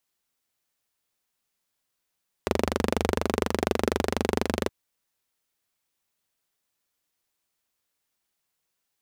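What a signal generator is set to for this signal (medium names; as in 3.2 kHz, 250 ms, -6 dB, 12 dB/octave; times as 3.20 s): single-cylinder engine model, steady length 2.22 s, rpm 2900, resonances 83/230/390 Hz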